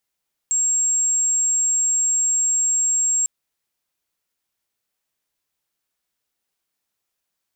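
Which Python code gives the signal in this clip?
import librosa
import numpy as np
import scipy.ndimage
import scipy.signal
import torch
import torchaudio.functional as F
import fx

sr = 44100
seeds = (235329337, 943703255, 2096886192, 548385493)

y = 10.0 ** (-16.5 / 20.0) * np.sin(2.0 * np.pi * (7540.0 * (np.arange(round(2.75 * sr)) / sr)))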